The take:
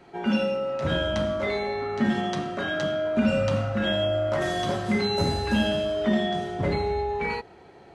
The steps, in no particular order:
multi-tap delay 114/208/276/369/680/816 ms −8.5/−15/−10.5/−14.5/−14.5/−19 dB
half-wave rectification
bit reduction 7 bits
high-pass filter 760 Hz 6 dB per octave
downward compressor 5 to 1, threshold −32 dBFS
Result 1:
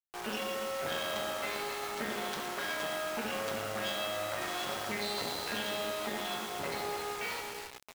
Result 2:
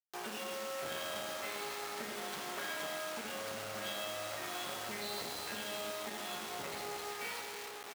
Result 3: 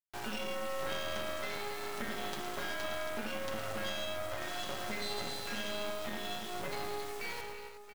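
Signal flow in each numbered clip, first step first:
half-wave rectification, then high-pass filter, then downward compressor, then multi-tap delay, then bit reduction
downward compressor, then half-wave rectification, then multi-tap delay, then bit reduction, then high-pass filter
high-pass filter, then bit reduction, then downward compressor, then multi-tap delay, then half-wave rectification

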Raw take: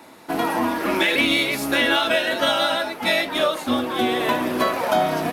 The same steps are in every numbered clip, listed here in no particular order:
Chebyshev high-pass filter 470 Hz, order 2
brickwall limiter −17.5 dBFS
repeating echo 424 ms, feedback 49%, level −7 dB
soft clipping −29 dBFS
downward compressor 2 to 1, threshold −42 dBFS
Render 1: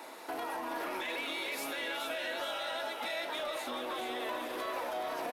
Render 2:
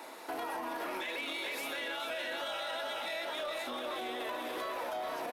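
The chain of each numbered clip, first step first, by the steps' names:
brickwall limiter, then Chebyshev high-pass filter, then downward compressor, then soft clipping, then repeating echo
repeating echo, then brickwall limiter, then Chebyshev high-pass filter, then downward compressor, then soft clipping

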